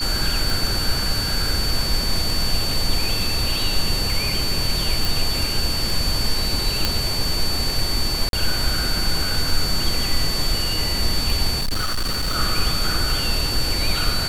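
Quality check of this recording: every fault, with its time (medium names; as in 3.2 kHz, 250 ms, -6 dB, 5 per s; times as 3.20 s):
tick 33 1/3 rpm
whine 4.5 kHz -24 dBFS
5.05 s: pop
6.85 s: pop
8.29–8.33 s: dropout 42 ms
11.57–12.37 s: clipped -18.5 dBFS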